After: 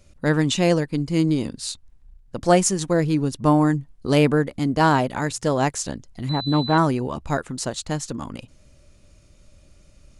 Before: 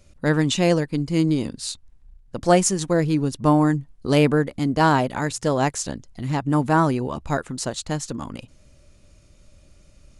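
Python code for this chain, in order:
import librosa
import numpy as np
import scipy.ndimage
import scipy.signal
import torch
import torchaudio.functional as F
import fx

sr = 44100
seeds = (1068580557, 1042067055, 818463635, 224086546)

y = fx.pwm(x, sr, carrier_hz=4000.0, at=(6.29, 6.78))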